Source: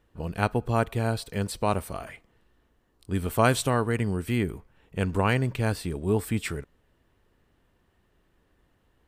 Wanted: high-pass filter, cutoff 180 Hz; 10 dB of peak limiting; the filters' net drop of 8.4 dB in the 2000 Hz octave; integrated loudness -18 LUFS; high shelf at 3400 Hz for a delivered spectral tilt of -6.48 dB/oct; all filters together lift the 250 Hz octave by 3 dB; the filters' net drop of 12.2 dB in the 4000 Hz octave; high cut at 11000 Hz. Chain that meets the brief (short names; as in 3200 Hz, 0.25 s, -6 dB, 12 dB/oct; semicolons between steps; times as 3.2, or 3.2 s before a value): HPF 180 Hz; LPF 11000 Hz; bell 250 Hz +5.5 dB; bell 2000 Hz -8 dB; high shelf 3400 Hz -8.5 dB; bell 4000 Hz -7 dB; gain +13 dB; limiter -4 dBFS